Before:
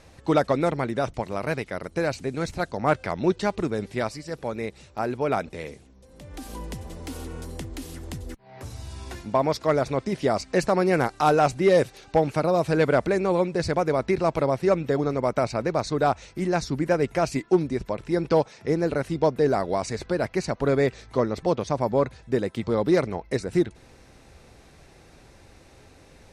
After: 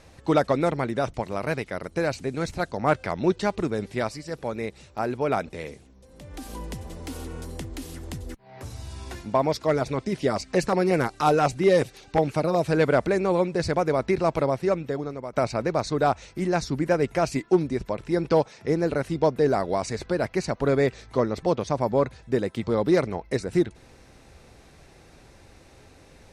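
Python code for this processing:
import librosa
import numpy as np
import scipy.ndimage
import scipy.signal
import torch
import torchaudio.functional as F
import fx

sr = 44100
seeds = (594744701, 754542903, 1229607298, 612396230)

y = fx.filter_lfo_notch(x, sr, shape='saw_down', hz=5.5, low_hz=470.0, high_hz=1900.0, q=2.5, at=(9.41, 12.66), fade=0.02)
y = fx.edit(y, sr, fx.fade_out_to(start_s=14.39, length_s=0.94, floor_db=-13.0), tone=tone)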